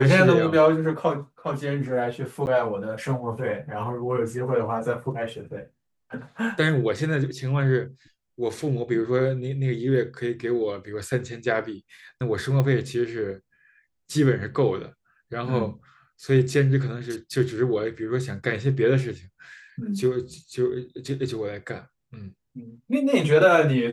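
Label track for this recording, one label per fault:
2.460000	2.470000	drop-out 9.8 ms
12.600000	12.600000	click −12 dBFS

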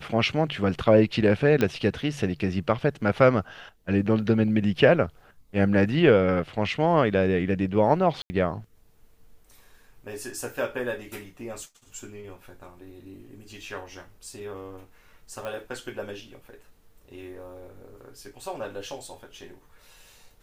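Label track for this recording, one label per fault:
1.610000	1.610000	click −11 dBFS
8.220000	8.300000	drop-out 80 ms
15.450000	15.450000	click −22 dBFS

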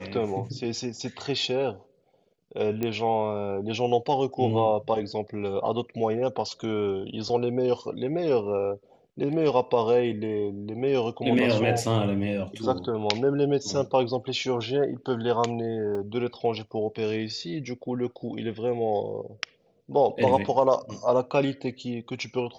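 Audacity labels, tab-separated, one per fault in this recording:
2.830000	2.830000	click −15 dBFS
15.950000	15.950000	drop-out 3.2 ms

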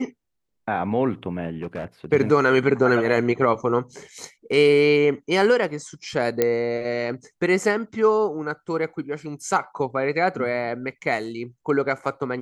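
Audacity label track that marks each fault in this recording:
1.520000	2.060000	clipping −24 dBFS
6.420000	6.420000	click −6 dBFS

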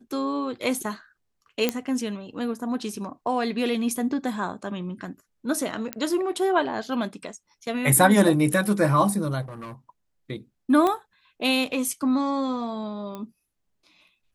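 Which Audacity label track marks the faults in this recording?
1.690000	1.690000	click −7 dBFS
5.930000	5.930000	click −12 dBFS
9.410000	9.730000	clipping −34 dBFS
10.870000	10.870000	click −12 dBFS
13.150000	13.150000	click −22 dBFS

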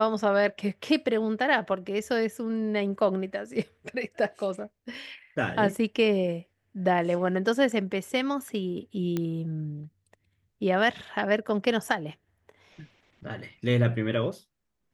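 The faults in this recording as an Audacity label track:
9.170000	9.170000	click −16 dBFS

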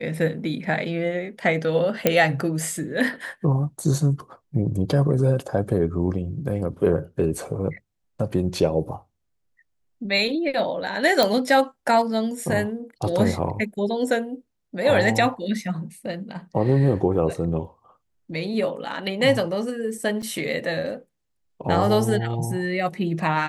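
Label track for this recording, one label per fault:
2.070000	2.070000	click −3 dBFS
11.230000	11.230000	click −5 dBFS
20.220000	20.230000	drop-out 5.7 ms

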